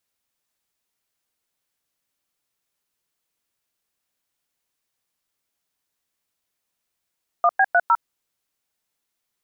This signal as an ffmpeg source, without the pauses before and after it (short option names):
-f lavfi -i "aevalsrc='0.168*clip(min(mod(t,0.153),0.052-mod(t,0.153))/0.002,0,1)*(eq(floor(t/0.153),0)*(sin(2*PI*697*mod(t,0.153))+sin(2*PI*1209*mod(t,0.153)))+eq(floor(t/0.153),1)*(sin(2*PI*770*mod(t,0.153))+sin(2*PI*1633*mod(t,0.153)))+eq(floor(t/0.153),2)*(sin(2*PI*697*mod(t,0.153))+sin(2*PI*1477*mod(t,0.153)))+eq(floor(t/0.153),3)*(sin(2*PI*941*mod(t,0.153))+sin(2*PI*1336*mod(t,0.153))))':d=0.612:s=44100"